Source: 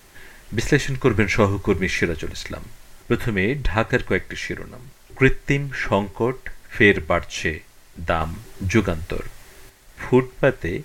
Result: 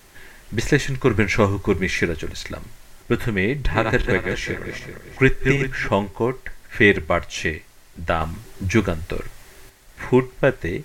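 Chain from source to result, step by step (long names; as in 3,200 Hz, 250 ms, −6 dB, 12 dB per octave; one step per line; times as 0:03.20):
0:03.45–0:05.88: feedback delay that plays each chunk backwards 192 ms, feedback 49%, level −5 dB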